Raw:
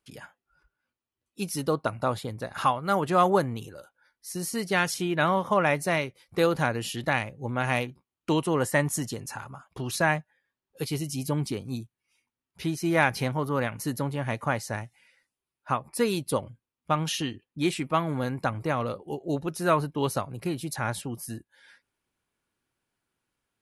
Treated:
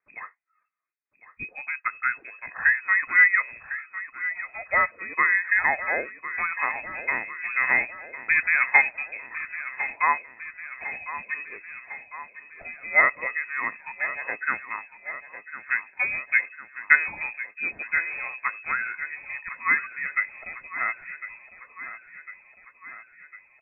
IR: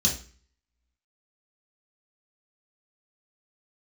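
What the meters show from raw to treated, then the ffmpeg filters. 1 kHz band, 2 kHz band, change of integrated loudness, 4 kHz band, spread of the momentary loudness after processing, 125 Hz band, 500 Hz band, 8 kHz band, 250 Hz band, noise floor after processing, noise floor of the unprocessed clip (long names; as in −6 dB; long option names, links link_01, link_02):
−1.5 dB, +11.0 dB, +3.5 dB, below −40 dB, 20 LU, below −25 dB, −12.5 dB, below −40 dB, −20.5 dB, −59 dBFS, below −85 dBFS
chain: -af "highpass=140,agate=range=-6dB:threshold=-46dB:ratio=16:detection=peak,lowshelf=frequency=520:width_type=q:width=3:gain=-6,aphaser=in_gain=1:out_gain=1:delay=1.5:decay=0.63:speed=0.12:type=sinusoidal,aecho=1:1:1053|2106|3159|4212|5265|6318|7371:0.224|0.134|0.0806|0.0484|0.029|0.0174|0.0104,lowpass=frequency=2300:width_type=q:width=0.5098,lowpass=frequency=2300:width_type=q:width=0.6013,lowpass=frequency=2300:width_type=q:width=0.9,lowpass=frequency=2300:width_type=q:width=2.563,afreqshift=-2700,volume=-1dB"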